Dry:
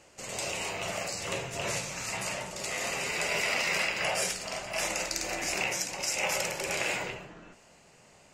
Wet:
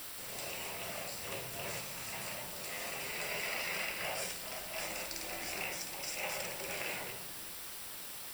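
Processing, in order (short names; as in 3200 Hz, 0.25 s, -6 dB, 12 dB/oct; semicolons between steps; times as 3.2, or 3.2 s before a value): requantised 6-bit, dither triangular; notch 6600 Hz, Q 5.7; gain -9 dB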